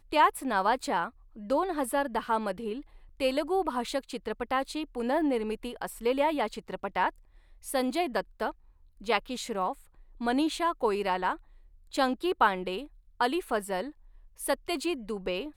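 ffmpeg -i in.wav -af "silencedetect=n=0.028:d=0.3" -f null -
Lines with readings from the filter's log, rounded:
silence_start: 1.07
silence_end: 1.50 | silence_duration: 0.43
silence_start: 2.74
silence_end: 3.21 | silence_duration: 0.47
silence_start: 7.09
silence_end: 7.68 | silence_duration: 0.58
silence_start: 8.50
silence_end: 9.07 | silence_duration: 0.57
silence_start: 9.72
silence_end: 10.21 | silence_duration: 0.49
silence_start: 11.33
silence_end: 11.94 | silence_duration: 0.61
silence_start: 12.80
silence_end: 13.21 | silence_duration: 0.41
silence_start: 13.83
silence_end: 14.41 | silence_duration: 0.58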